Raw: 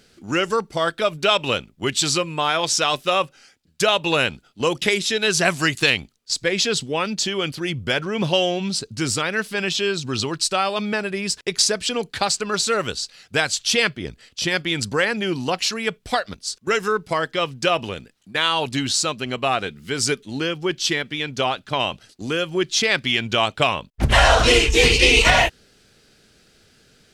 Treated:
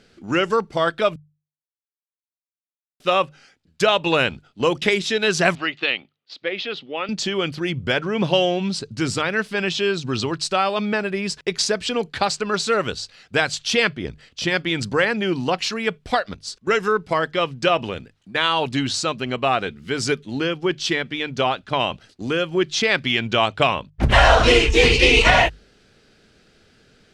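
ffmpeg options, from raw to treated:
-filter_complex "[0:a]asettb=1/sr,asplit=3[a][b][c];[a]atrim=end=5.554[d];[b]atrim=start=5.55:end=7.09,asetpts=PTS-STARTPTS,afade=t=in:d=0.004:c=qsin,afade=t=out:st=1.536:d=0.004:c=qsin,highpass=430,equalizer=f=440:t=q:w=4:g=-6,equalizer=f=680:t=q:w=4:g=-4,equalizer=f=990:t=q:w=4:g=-8,equalizer=f=1.6k:t=q:w=4:g=-7,equalizer=f=2.3k:t=q:w=4:g=-3,lowpass=f=3.4k:w=0.5412,lowpass=f=3.4k:w=1.3066[e];[c]atrim=start=7.086[f];[d][e]acrossfade=d=0.004:c1=hsin:c2=qsin[g];[g][f]acrossfade=d=0.004:c1=qsin:c2=hsin,asplit=3[h][i][j];[h]atrim=end=1.16,asetpts=PTS-STARTPTS,afade=t=out:st=1.156:d=0.004:c=hsin[k];[i]atrim=start=1.16:end=3,asetpts=PTS-STARTPTS,volume=0[l];[j]atrim=start=3,asetpts=PTS-STARTPTS,afade=t=in:d=0.004:c=hsin[m];[k][l][m]concat=n=3:v=0:a=1,aemphasis=mode=reproduction:type=50fm,bandreject=f=50:t=h:w=6,bandreject=f=100:t=h:w=6,bandreject=f=150:t=h:w=6,volume=1.5dB"

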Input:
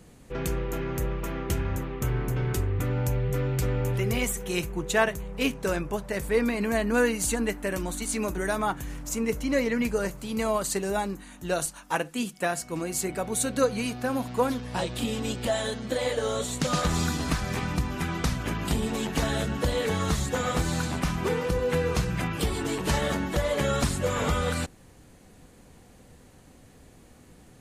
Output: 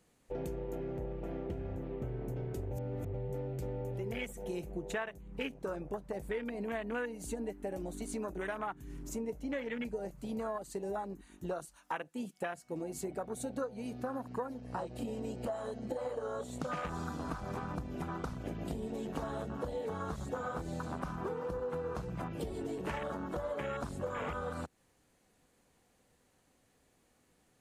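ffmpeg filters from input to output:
-filter_complex "[0:a]asettb=1/sr,asplit=3[a][b][c];[a]atrim=end=0.754[d];[b]atrim=start=0.75:end=2.21,asetpts=PTS-STARTPTS,afade=t=in:d=0.004:c=qsin,afade=t=out:st=1.456:d=0.004:c=qsin,acrossover=split=3600[e][f];[f]acompressor=threshold=-53dB:ratio=4:attack=1:release=60[g];[e][g]amix=inputs=2:normalize=0[h];[c]atrim=start=2.206[i];[d][h]acrossfade=d=0.004:c1=hsin:c2=qsin[j];[j][i]acrossfade=d=0.004:c1=qsin:c2=hsin,asettb=1/sr,asplit=3[k][l][m];[k]atrim=end=14.164[n];[l]atrim=start=14.16:end=16.4,asetpts=PTS-STARTPTS,afade=t=in:d=0.004:c=qsin,afade=t=out:st=2.236:d=0.004:c=qsin,bandreject=f=3.5k:w=5.9[o];[m]atrim=start=16.396[p];[n][o]acrossfade=d=0.004:c1=hsin:c2=qsin[q];[q][p]acrossfade=d=0.004:c1=qsin:c2=hsin,asplit=3[r][s][t];[r]atrim=end=2.712[u];[s]atrim=start=2.708:end=3.142,asetpts=PTS-STARTPTS,areverse[v];[t]atrim=start=3.138[w];[u][v]acrossfade=d=0.004:c1=hsin:c2=hsin[x];[x][w]acrossfade=d=0.004:c1=hsin:c2=hsin,afwtdn=0.0316,lowshelf=f=280:g=-10,acompressor=threshold=-39dB:ratio=5,volume=3dB"

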